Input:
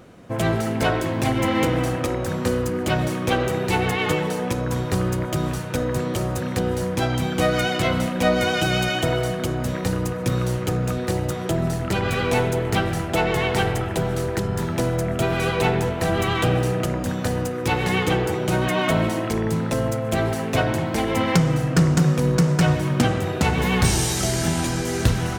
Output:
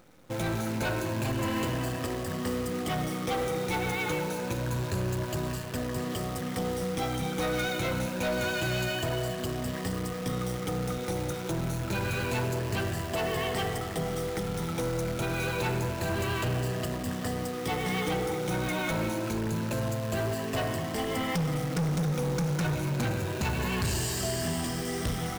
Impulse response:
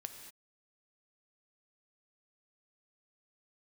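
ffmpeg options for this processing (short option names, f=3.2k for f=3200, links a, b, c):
-af "afftfilt=real='re*pow(10,10/40*sin(2*PI*(1.4*log(max(b,1)*sr/1024/100)/log(2)-(0.27)*(pts-256)/sr)))':imag='im*pow(10,10/40*sin(2*PI*(1.4*log(max(b,1)*sr/1024/100)/log(2)-(0.27)*(pts-256)/sr)))':win_size=1024:overlap=0.75,asoftclip=type=hard:threshold=-16.5dB,acrusher=bits=6:dc=4:mix=0:aa=0.000001,volume=-8.5dB"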